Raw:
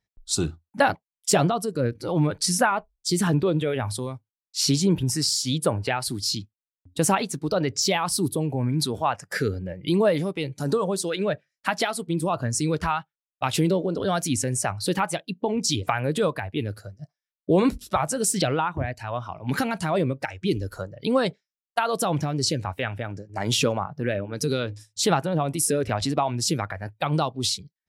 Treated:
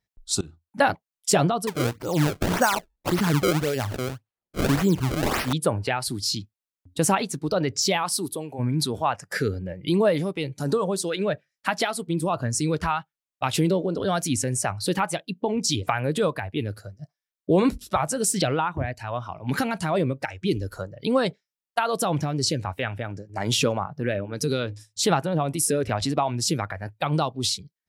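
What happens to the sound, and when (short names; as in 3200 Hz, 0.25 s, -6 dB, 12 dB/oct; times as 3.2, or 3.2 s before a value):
0.41–0.83 fade in, from -24 dB
1.67–5.53 decimation with a swept rate 28×, swing 160% 1.8 Hz
8.02–8.58 HPF 280 Hz -> 910 Hz 6 dB/oct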